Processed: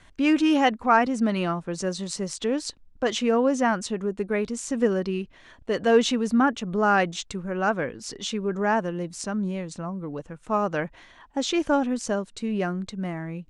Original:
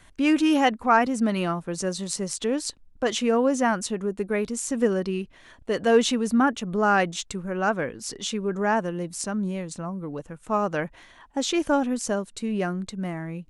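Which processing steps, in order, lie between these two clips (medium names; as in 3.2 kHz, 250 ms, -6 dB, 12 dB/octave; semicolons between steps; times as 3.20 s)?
low-pass 6.9 kHz 12 dB/octave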